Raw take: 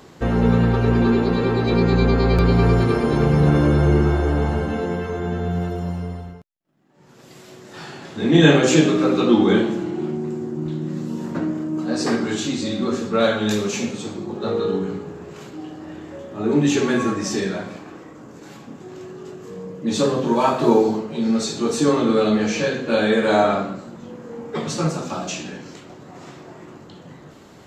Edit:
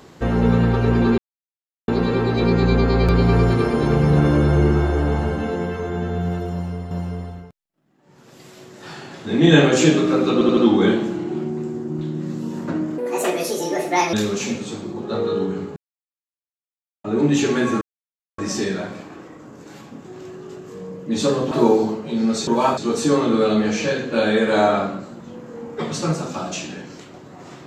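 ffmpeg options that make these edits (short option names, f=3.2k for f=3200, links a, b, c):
-filter_complex "[0:a]asplit=14[a][b][c][d][e][f][g][h][i][j][k][l][m][n];[a]atrim=end=1.18,asetpts=PTS-STARTPTS,afade=t=out:st=1.176:d=0.004:c=hsin,apad=pad_dur=0.7[o];[b]atrim=start=1.18:end=6.212,asetpts=PTS-STARTPTS,afade=t=in:d=0.004:c=hsin[p];[c]atrim=start=5.818:end=9.322[q];[d]atrim=start=9.238:end=9.322[r];[e]atrim=start=9.238:end=9.322[s];[f]atrim=start=9.238:end=11.654[t];[g]atrim=start=11.65:end=13.46,asetpts=PTS-STARTPTS,asetrate=69237,aresample=44100,atrim=end_sample=50841,asetpts=PTS-STARTPTS[u];[h]atrim=start=13.456:end=15.09,asetpts=PTS-STARTPTS,afade=t=out:st=1.63:d=0.004:c=hsin[v];[i]atrim=start=15.09:end=16.37,asetpts=PTS-STARTPTS,volume=0[w];[j]atrim=start=16.37:end=17.14,asetpts=PTS-STARTPTS,afade=t=in:d=0.004:c=hsin,afade=t=out:st=0.766:d=0.004:c=hsin,apad=pad_dur=0.57[x];[k]atrim=start=17.14:end=20.272,asetpts=PTS-STARTPTS,afade=t=in:d=0.004:c=hsin[y];[l]atrim=start=20.568:end=21.532[z];[m]atrim=start=20.268:end=20.572[aa];[n]atrim=start=21.528[ab];[o][p]concat=n=2:v=0:a=1[ac];[ac][q]acrossfade=d=0.004:c1=hsin:c2=hsin[ad];[ad][r]acrossfade=d=0.004:c1=hsin:c2=hsin[ae];[ae][s]acrossfade=d=0.004:c1=hsin:c2=hsin[af];[af][t]acrossfade=d=0.004:c1=hsin:c2=hsin[ag];[ag][u]acrossfade=d=0.004:c1=hsin:c2=hsin[ah];[v][w][x][y]concat=n=4:v=0:a=1[ai];[ah][ai]acrossfade=d=0.004:c1=hsin:c2=hsin[aj];[aj][z]acrossfade=d=0.004:c1=hsin:c2=hsin[ak];[ak][aa]acrossfade=d=0.004:c1=hsin:c2=hsin[al];[al][ab]acrossfade=d=0.004:c1=hsin:c2=hsin"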